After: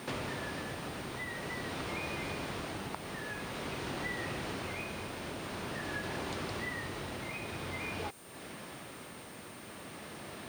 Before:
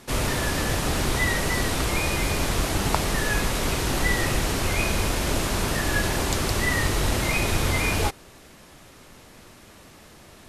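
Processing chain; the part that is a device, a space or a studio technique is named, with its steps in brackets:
medium wave at night (band-pass filter 120–3,900 Hz; downward compressor 4 to 1, threshold −43 dBFS, peak gain reduction 21 dB; amplitude tremolo 0.48 Hz, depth 32%; steady tone 9,000 Hz −62 dBFS; white noise bed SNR 19 dB)
level +4.5 dB

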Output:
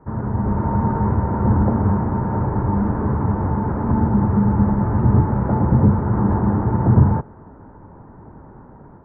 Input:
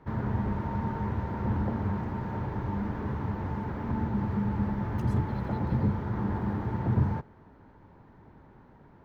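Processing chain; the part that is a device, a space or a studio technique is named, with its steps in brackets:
action camera in a waterproof case (low-pass filter 1,400 Hz 24 dB per octave; automatic gain control gain up to 6.5 dB; level +6 dB; AAC 48 kbit/s 48,000 Hz)

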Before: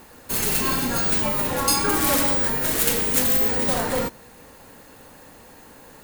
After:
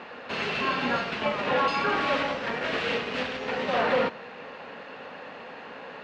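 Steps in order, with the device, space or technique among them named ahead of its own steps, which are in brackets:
overdrive pedal into a guitar cabinet (mid-hump overdrive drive 25 dB, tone 1,200 Hz, clips at −5 dBFS; loudspeaker in its box 83–4,300 Hz, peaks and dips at 83 Hz −7 dB, 120 Hz −5 dB, 320 Hz −8 dB, 900 Hz −4 dB, 2,700 Hz +6 dB)
level −5.5 dB

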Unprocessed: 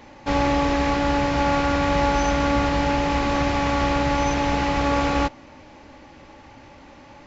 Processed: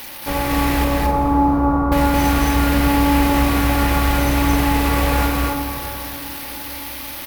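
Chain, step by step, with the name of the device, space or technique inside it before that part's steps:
budget class-D amplifier (gap after every zero crossing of 0.072 ms; spike at every zero crossing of −18.5 dBFS)
0:00.84–0:01.92: Chebyshev low-pass filter 1,300 Hz, order 6
loudspeakers that aren't time-aligned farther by 76 metres −1 dB, 92 metres −7 dB
dense smooth reverb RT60 4.7 s, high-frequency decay 0.5×, DRR 6.5 dB

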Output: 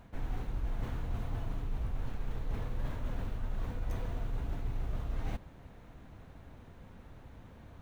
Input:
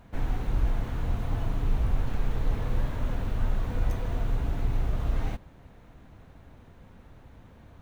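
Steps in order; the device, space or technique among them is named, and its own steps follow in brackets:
compression on the reversed sound (reversed playback; downward compressor, threshold −30 dBFS, peak gain reduction 11 dB; reversed playback)
level −1 dB

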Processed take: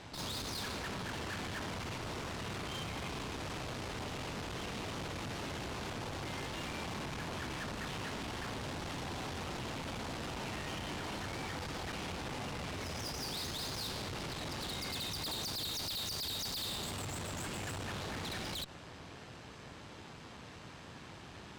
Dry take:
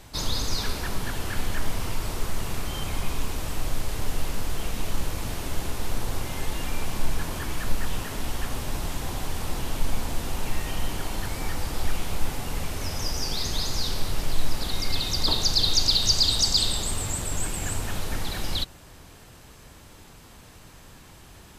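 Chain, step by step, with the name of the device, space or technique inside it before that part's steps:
valve radio (band-pass filter 99–4,600 Hz; tube saturation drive 41 dB, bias 0.6; saturating transformer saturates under 110 Hz)
level +3.5 dB

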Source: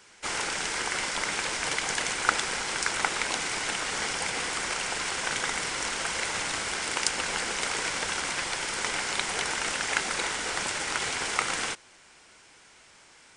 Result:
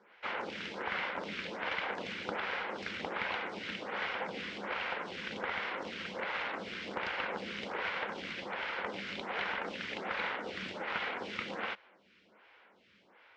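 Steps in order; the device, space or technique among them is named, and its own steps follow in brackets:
vibe pedal into a guitar amplifier (phaser with staggered stages 1.3 Hz; tube saturation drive 25 dB, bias 0.6; loudspeaker in its box 97–3,400 Hz, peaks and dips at 140 Hz −10 dB, 200 Hz +9 dB, 530 Hz +5 dB)

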